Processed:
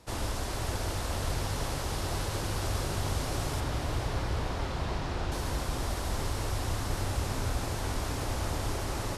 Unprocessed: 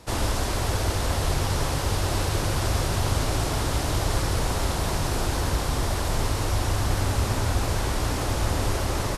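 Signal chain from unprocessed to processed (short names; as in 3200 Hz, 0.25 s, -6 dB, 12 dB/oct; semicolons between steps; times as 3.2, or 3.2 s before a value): 3.6–5.32 LPF 4000 Hz 12 dB/oct; diffused feedback echo 0.479 s, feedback 55%, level -7 dB; gain -8 dB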